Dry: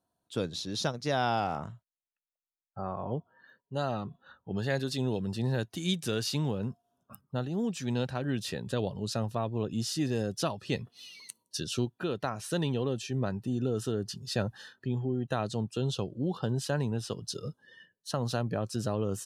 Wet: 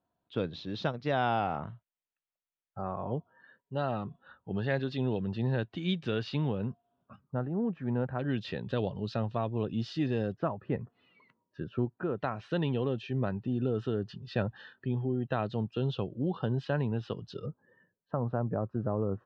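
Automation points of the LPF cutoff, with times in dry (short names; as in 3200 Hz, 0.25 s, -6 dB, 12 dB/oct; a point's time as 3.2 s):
LPF 24 dB/oct
3300 Hz
from 7.24 s 1700 Hz
from 8.19 s 3600 Hz
from 10.34 s 1700 Hz
from 12.18 s 3200 Hz
from 17.46 s 1300 Hz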